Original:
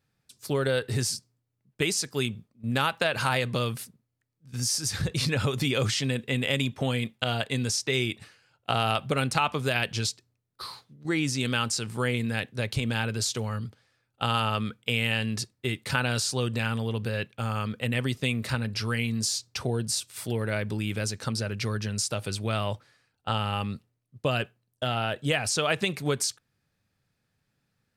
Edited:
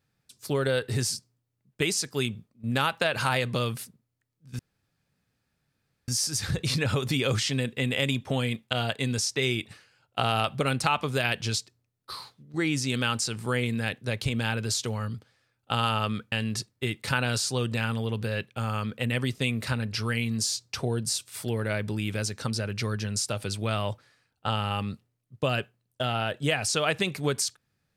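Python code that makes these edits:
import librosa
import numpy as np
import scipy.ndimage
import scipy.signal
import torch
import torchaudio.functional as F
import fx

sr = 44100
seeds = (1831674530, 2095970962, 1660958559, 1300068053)

y = fx.edit(x, sr, fx.insert_room_tone(at_s=4.59, length_s=1.49),
    fx.cut(start_s=14.83, length_s=0.31), tone=tone)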